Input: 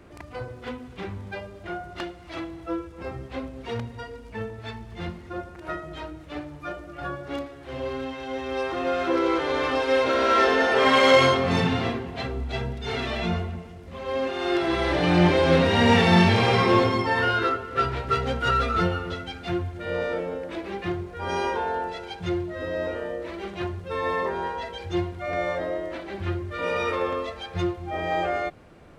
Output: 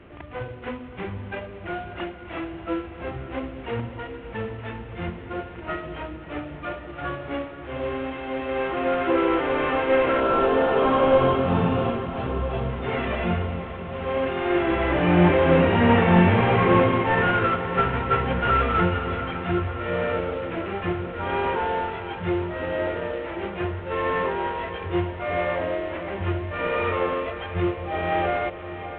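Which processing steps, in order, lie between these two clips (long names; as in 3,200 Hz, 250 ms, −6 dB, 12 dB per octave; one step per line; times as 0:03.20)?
variable-slope delta modulation 16 kbit/s
0:10.20–0:12.70: parametric band 2,000 Hz −14 dB 0.57 octaves
feedback delay with all-pass diffusion 613 ms, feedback 75%, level −13 dB
level +2.5 dB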